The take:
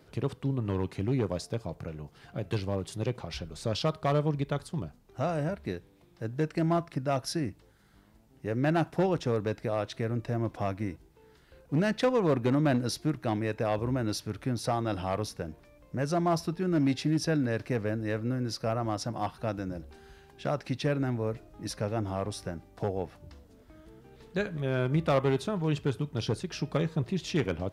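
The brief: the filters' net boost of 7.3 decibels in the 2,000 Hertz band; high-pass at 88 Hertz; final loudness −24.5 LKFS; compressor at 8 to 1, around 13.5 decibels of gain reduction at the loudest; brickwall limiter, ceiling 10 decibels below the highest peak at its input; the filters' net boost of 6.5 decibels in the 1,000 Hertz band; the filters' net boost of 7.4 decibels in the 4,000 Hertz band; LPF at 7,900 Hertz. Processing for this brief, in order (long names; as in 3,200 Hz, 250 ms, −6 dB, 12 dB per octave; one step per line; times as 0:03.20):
high-pass filter 88 Hz
low-pass filter 7,900 Hz
parametric band 1,000 Hz +7.5 dB
parametric band 2,000 Hz +5 dB
parametric band 4,000 Hz +8 dB
downward compressor 8 to 1, threshold −32 dBFS
level +15 dB
brickwall limiter −12 dBFS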